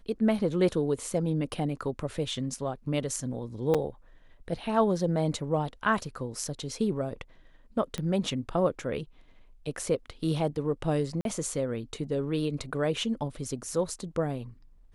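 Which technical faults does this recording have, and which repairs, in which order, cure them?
3.74–3.75 s: dropout 6.2 ms
7.98 s: pop -19 dBFS
11.21–11.25 s: dropout 42 ms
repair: de-click; interpolate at 3.74 s, 6.2 ms; interpolate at 11.21 s, 42 ms

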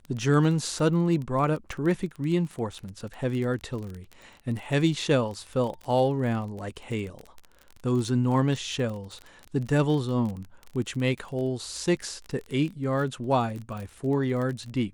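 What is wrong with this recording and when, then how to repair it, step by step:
crackle 26 per s -32 dBFS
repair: de-click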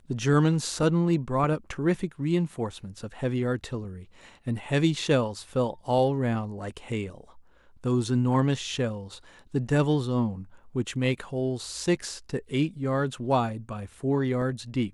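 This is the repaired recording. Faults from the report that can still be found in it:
nothing left

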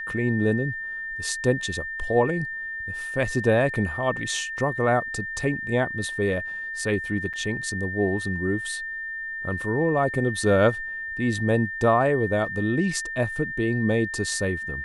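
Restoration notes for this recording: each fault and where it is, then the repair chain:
whine 1.8 kHz -30 dBFS
7.33–7.34 s: dropout 6.6 ms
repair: band-stop 1.8 kHz, Q 30; interpolate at 7.33 s, 6.6 ms

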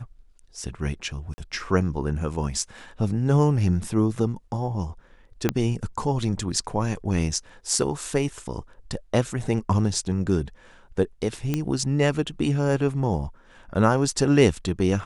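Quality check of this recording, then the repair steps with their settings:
1.34–1.38 s: dropout 40 ms
5.49 s: pop -7 dBFS
11.54 s: pop -11 dBFS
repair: de-click; interpolate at 1.34 s, 40 ms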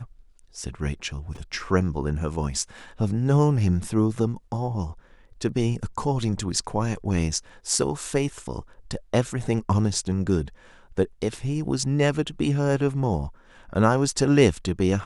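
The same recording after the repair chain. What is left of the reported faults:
5.49 s: pop
11.54 s: pop

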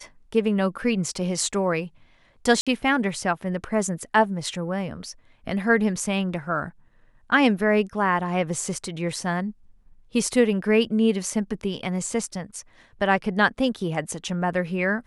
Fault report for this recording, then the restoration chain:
2.61–2.67 s: dropout 56 ms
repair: interpolate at 2.61 s, 56 ms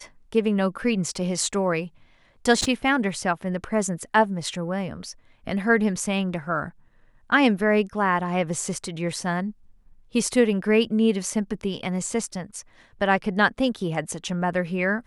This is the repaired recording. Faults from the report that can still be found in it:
nothing left

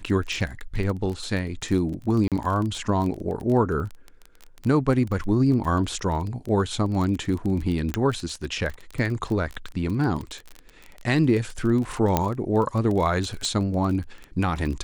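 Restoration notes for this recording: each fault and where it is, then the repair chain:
crackle 22 per s -28 dBFS
2.28–2.32 s: dropout 37 ms
7.94 s: pop -10 dBFS
12.17 s: pop -6 dBFS
13.45 s: pop -16 dBFS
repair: de-click; interpolate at 2.28 s, 37 ms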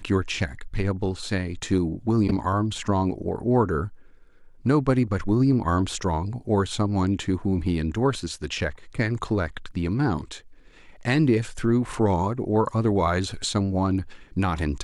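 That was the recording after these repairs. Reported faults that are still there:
7.94 s: pop
13.45 s: pop

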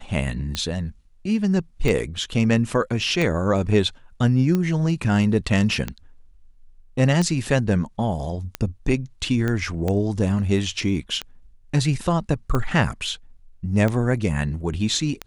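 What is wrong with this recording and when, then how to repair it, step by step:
tick 45 rpm -11 dBFS
9.48 s: pop -13 dBFS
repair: de-click

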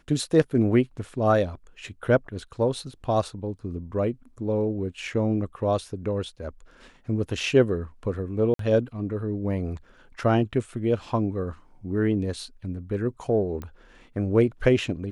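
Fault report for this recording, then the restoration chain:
8.54–8.59 s: dropout 53 ms
13.62 s: pop -23 dBFS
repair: de-click; interpolate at 8.54 s, 53 ms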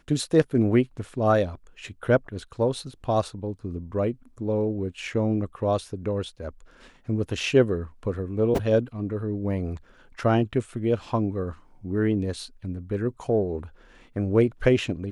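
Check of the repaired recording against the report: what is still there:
nothing left

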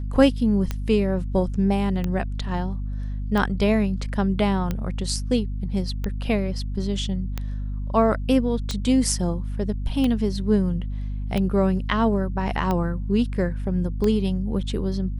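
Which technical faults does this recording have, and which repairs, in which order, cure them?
hum 50 Hz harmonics 5 -28 dBFS
tick 45 rpm -13 dBFS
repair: de-click; de-hum 50 Hz, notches 5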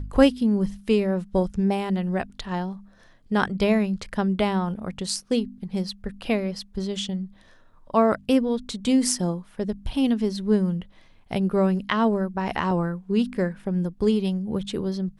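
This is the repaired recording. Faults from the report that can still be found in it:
nothing left

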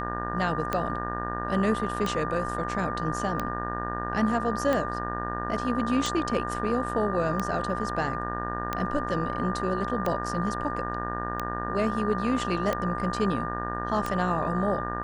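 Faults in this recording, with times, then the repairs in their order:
buzz 60 Hz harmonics 31 -34 dBFS
tick 45 rpm -14 dBFS
whine 1.2 kHz -33 dBFS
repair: de-click; de-hum 60 Hz, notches 31; band-stop 1.2 kHz, Q 30

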